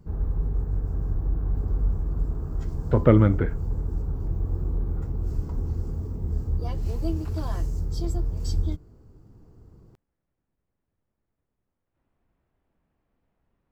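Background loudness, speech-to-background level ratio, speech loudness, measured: −30.0 LKFS, 9.0 dB, −21.0 LKFS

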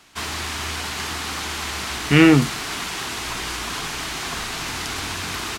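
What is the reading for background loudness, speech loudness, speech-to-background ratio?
−26.5 LKFS, −15.5 LKFS, 11.0 dB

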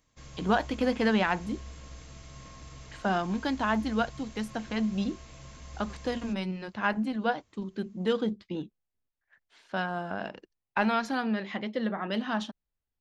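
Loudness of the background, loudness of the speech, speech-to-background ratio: −47.5 LKFS, −31.0 LKFS, 16.5 dB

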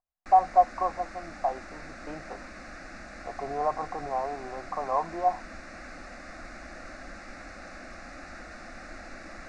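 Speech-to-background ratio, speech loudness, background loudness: 15.5 dB, −28.5 LKFS, −44.0 LKFS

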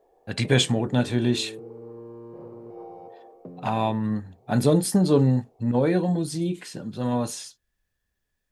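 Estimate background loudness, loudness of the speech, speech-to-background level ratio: −43.0 LKFS, −24.0 LKFS, 19.0 dB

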